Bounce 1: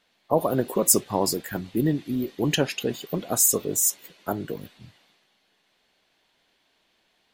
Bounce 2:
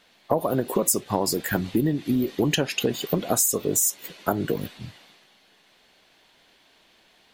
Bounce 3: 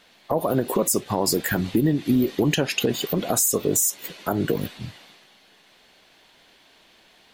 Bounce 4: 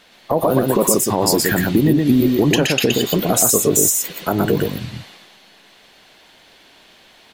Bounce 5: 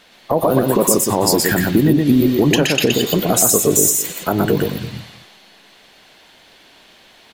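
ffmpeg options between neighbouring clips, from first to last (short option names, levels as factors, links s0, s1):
-af "acompressor=threshold=0.0398:ratio=8,volume=2.82"
-af "alimiter=limit=0.2:level=0:latency=1:release=47,volume=1.5"
-af "aecho=1:1:121:0.708,volume=1.78"
-af "aecho=1:1:214:0.141,volume=1.12"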